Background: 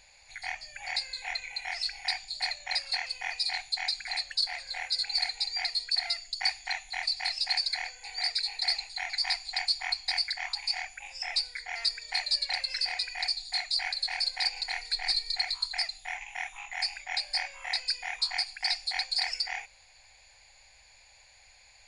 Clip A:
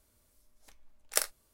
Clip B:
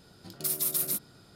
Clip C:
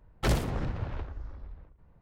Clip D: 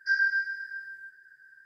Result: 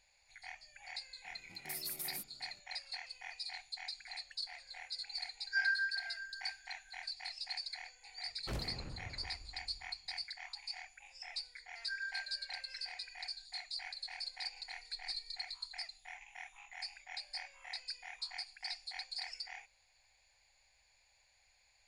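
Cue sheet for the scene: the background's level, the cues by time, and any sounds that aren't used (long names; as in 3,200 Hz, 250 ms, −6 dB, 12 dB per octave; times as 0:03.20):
background −13.5 dB
0:01.25: mix in B −14 dB
0:05.46: mix in D −8 dB
0:08.24: mix in C −15 dB
0:11.81: mix in D −17 dB
not used: A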